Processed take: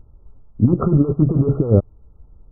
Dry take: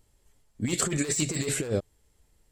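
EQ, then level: brick-wall FIR low-pass 1400 Hz; low shelf 140 Hz +6.5 dB; low shelf 350 Hz +7 dB; +7.5 dB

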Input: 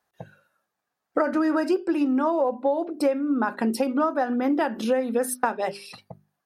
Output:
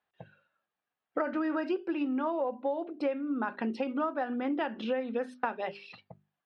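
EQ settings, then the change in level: HPF 41 Hz; synth low-pass 3100 Hz, resonance Q 2.2; air absorption 58 m; -8.5 dB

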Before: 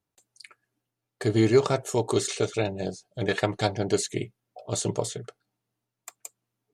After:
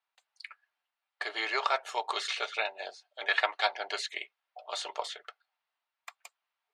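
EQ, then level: HPF 780 Hz 24 dB/oct; air absorption 370 m; high shelf 2300 Hz +11.5 dB; +3.0 dB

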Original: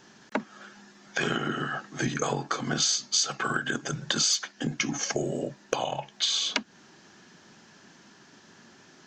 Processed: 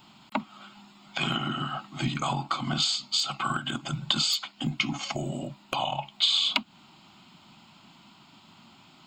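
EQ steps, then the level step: high shelf 6400 Hz +9.5 dB; fixed phaser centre 1700 Hz, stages 6; +3.5 dB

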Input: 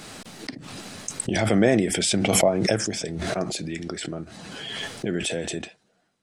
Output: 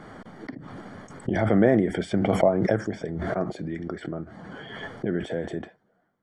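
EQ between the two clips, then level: polynomial smoothing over 41 samples; 0.0 dB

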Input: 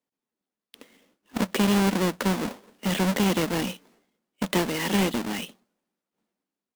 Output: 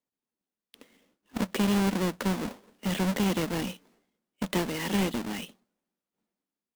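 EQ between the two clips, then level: low shelf 140 Hz +5.5 dB; -5.0 dB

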